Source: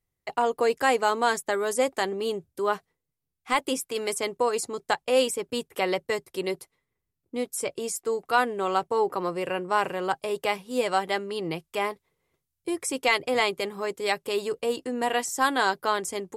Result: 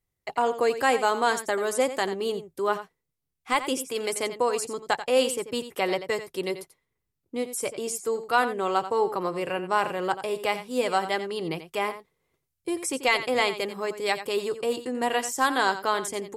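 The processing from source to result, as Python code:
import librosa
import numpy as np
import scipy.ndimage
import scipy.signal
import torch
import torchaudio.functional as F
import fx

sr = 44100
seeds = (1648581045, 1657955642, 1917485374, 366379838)

y = x + 10.0 ** (-12.0 / 20.0) * np.pad(x, (int(88 * sr / 1000.0), 0))[:len(x)]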